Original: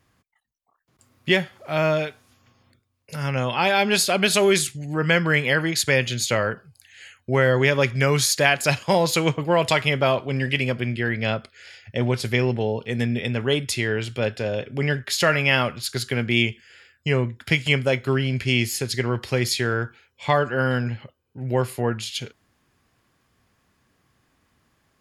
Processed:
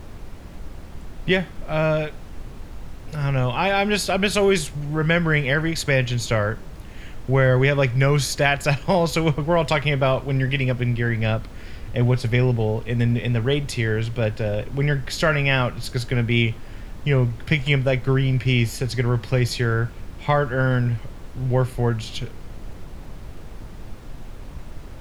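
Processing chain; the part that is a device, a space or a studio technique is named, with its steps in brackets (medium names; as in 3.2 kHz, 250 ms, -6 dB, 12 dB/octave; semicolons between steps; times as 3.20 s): car interior (peaking EQ 110 Hz +6.5 dB 0.89 oct; treble shelf 4.1 kHz -8 dB; brown noise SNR 11 dB)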